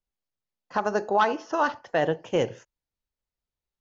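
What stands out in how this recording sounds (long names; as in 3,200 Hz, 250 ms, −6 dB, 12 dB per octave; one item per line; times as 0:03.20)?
background noise floor −92 dBFS
spectral slope −3.5 dB per octave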